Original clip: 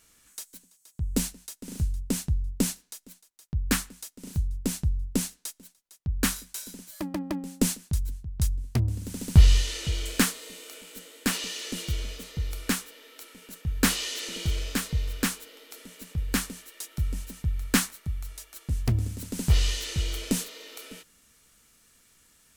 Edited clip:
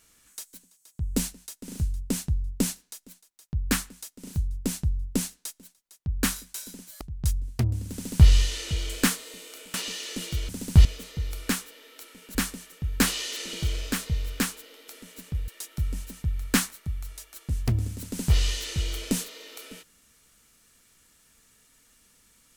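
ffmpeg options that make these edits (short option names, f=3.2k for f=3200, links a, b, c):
-filter_complex "[0:a]asplit=8[a][b][c][d][e][f][g][h];[a]atrim=end=7.012[i];[b]atrim=start=8.168:end=10.902[j];[c]atrim=start=11.298:end=12.052[k];[d]atrim=start=9.088:end=9.452[l];[e]atrim=start=12.048:end=13.552[m];[f]atrim=start=16.308:end=16.682[n];[g]atrim=start=13.548:end=16.312[o];[h]atrim=start=16.678[p];[i][j]acrossfade=d=0.004:c1=hsin:c2=hsin[q];[q][k]acrossfade=d=0.004:c1=hsin:c2=hsin[r];[r][l]acrossfade=d=0.004:c1=hsin:c2=hsin[s];[s][m]acrossfade=d=0.004:c1=hsin:c2=hsin[t];[t][n]acrossfade=d=0.004:c1=hsin:c2=hsin[u];[u][o]acrossfade=d=0.004:c1=hsin:c2=hsin[v];[v][p]acrossfade=d=0.004:c1=hsin:c2=hsin"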